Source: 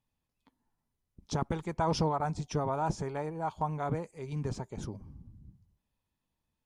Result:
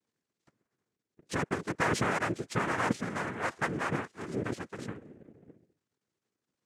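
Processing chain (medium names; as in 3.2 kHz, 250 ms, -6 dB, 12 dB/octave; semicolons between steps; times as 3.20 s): partial rectifier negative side -12 dB; noise-vocoded speech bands 3; trim +4 dB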